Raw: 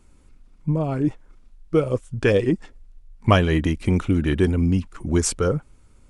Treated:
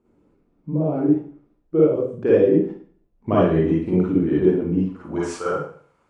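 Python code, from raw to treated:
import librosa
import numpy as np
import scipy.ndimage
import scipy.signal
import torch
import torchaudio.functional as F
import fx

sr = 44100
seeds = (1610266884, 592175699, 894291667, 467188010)

y = fx.rev_schroeder(x, sr, rt60_s=0.5, comb_ms=38, drr_db=-7.5)
y = fx.filter_sweep_bandpass(y, sr, from_hz=380.0, to_hz=1000.0, start_s=4.8, end_s=5.39, q=1.1)
y = y * 10.0 ** (-2.5 / 20.0)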